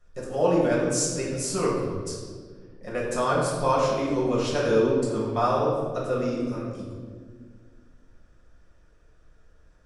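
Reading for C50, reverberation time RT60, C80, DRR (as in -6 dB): 0.5 dB, 1.7 s, 3.0 dB, -7.0 dB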